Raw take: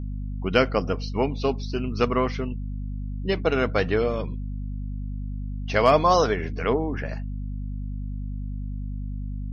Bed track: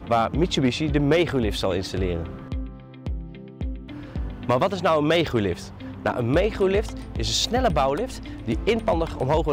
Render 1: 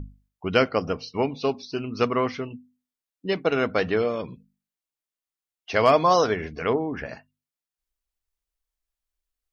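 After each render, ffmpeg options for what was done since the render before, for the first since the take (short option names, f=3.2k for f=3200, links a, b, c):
-af "bandreject=f=50:t=h:w=6,bandreject=f=100:t=h:w=6,bandreject=f=150:t=h:w=6,bandreject=f=200:t=h:w=6,bandreject=f=250:t=h:w=6"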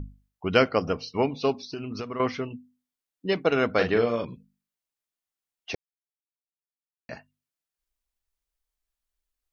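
-filter_complex "[0:a]asettb=1/sr,asplit=3[a][b][c];[a]atrim=end=1.634[d];[b]atrim=start=1.63:end=2.2,asetpts=PTS-STARTPTS,afade=t=in:d=0.004:c=qsin,afade=t=out:st=0.566:d=0.004:c=qsin,acompressor=threshold=-29dB:ratio=16:attack=3.2:release=140:knee=1:detection=peak[e];[c]atrim=start=2.196[f];[d][e]acrossfade=d=0.004:c1=hsin:c2=qsin[g];[g][f]acrossfade=d=0.004:c1=qsin:c2=hsin,asettb=1/sr,asplit=3[h][i][j];[h]atrim=end=3.754[k];[i]atrim=start=3.75:end=4.25,asetpts=PTS-STARTPTS,afade=t=in:d=0.004:c=qsin,afade=t=out:st=0.496:d=0.004:c=qsin,asplit=2[l][m];[m]adelay=43,volume=-7dB[n];[l][n]amix=inputs=2:normalize=0,atrim=end_sample=22050[o];[j]atrim=start=4.246[p];[k][o]acrossfade=d=0.004:c1=hsin:c2=qsin[q];[q][p]acrossfade=d=0.004:c1=qsin:c2=hsin,asplit=3[r][s][t];[r]atrim=end=5.75,asetpts=PTS-STARTPTS,afade=t=out:st=5.746:d=0.004:c=hsin[u];[s]atrim=start=5.75:end=7.09,asetpts=PTS-STARTPTS,volume=0[v];[t]atrim=start=7.09,asetpts=PTS-STARTPTS,afade=t=in:d=0.004:c=hsin[w];[u][v][w]concat=n=3:v=0:a=1"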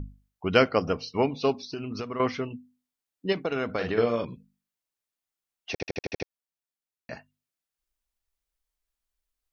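-filter_complex "[0:a]asettb=1/sr,asplit=3[a][b][c];[a]atrim=end=3.324[d];[b]atrim=start=3.32:end=3.98,asetpts=PTS-STARTPTS,afade=t=in:d=0.004:c=qsin,afade=t=out:st=0.656:d=0.004:c=qsin,acompressor=threshold=-24dB:ratio=6:attack=3.2:release=140:knee=1:detection=peak[e];[c]atrim=start=3.976[f];[d][e]acrossfade=d=0.004:c1=hsin:c2=qsin[g];[g][f]acrossfade=d=0.004:c1=qsin:c2=hsin,asplit=8[h][i][j][k][l][m][n][o];[h]atrim=end=5.802[p];[i]atrim=start=5.718:end=5.802[q];[j]atrim=start=5.718:end=5.802[r];[k]atrim=start=5.718:end=5.802[s];[l]atrim=start=5.718:end=5.802[t];[m]atrim=start=5.718:end=5.802[u];[n]atrim=start=5.718:end=5.802[v];[o]atrim=start=6.278[w];[p][q]acrossfade=d=0.004:c1=hsin:c2=hsin[x];[x][r]acrossfade=d=0.004:c1=hsin:c2=hsin[y];[y][s]acrossfade=d=0.004:c1=hsin:c2=hsin[z];[z][t]acrossfade=d=0.004:c1=hsin:c2=hsin[aa];[aa][u]acrossfade=d=0.004:c1=hsin:c2=hsin[ab];[ab][v]acrossfade=d=0.004:c1=hsin:c2=hsin[ac];[ac][w]acrossfade=d=0.004:c1=hsin:c2=hsin"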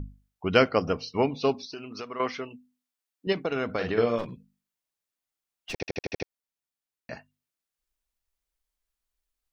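-filter_complex "[0:a]asettb=1/sr,asplit=3[a][b][c];[a]atrim=end=1.664[d];[b]atrim=start=1.66:end=3.27,asetpts=PTS-STARTPTS,afade=t=in:d=0.004:c=qsin,afade=t=out:st=1.606:d=0.004:c=qsin,highpass=f=490:p=1[e];[c]atrim=start=3.266[f];[d][e]acrossfade=d=0.004:c1=hsin:c2=qsin[g];[g][f]acrossfade=d=0.004:c1=qsin:c2=hsin,asettb=1/sr,asplit=3[h][i][j];[h]atrim=end=4.184[k];[i]atrim=start=4.18:end=5.76,asetpts=PTS-STARTPTS,afade=t=in:d=0.004:c=qsin,afade=t=out:st=1.576:d=0.004:c=qsin,aeval=exprs='clip(val(0),-1,0.0158)':c=same[l];[j]atrim=start=5.756[m];[k][l]acrossfade=d=0.004:c1=hsin:c2=qsin[n];[n][m]acrossfade=d=0.004:c1=qsin:c2=hsin"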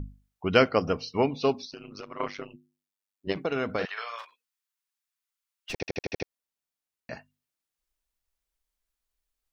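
-filter_complex "[0:a]asplit=3[a][b][c];[a]afade=t=out:st=1.69:d=0.02[d];[b]tremolo=f=99:d=0.947,afade=t=in:st=1.69:d=0.02,afade=t=out:st=3.35:d=0.02[e];[c]afade=t=in:st=3.35:d=0.02[f];[d][e][f]amix=inputs=3:normalize=0,asettb=1/sr,asplit=3[g][h][i];[g]atrim=end=3.854[j];[h]atrim=start=3.85:end=5.7,asetpts=PTS-STARTPTS,afade=t=in:d=0.004:c=qsin,afade=t=out:st=1.846:d=0.004:c=qsin,highpass=f=990:w=0.5412,highpass=f=990:w=1.3066[k];[i]atrim=start=5.696[l];[j][k]acrossfade=d=0.004:c1=hsin:c2=qsin[m];[m][l]acrossfade=d=0.004:c1=qsin:c2=hsin"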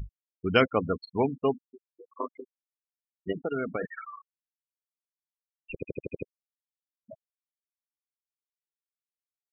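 -af "afftfilt=real='re*gte(hypot(re,im),0.0708)':imag='im*gte(hypot(re,im),0.0708)':win_size=1024:overlap=0.75,equalizer=f=590:t=o:w=0.75:g=-3.5"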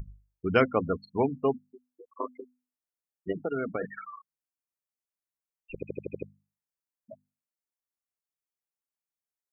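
-af "equalizer=f=3.5k:t=o:w=0.77:g=-11.5,bandreject=f=50:t=h:w=6,bandreject=f=100:t=h:w=6,bandreject=f=150:t=h:w=6,bandreject=f=200:t=h:w=6,bandreject=f=250:t=h:w=6"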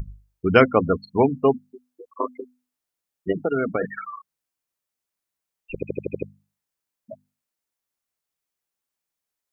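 -af "volume=8dB"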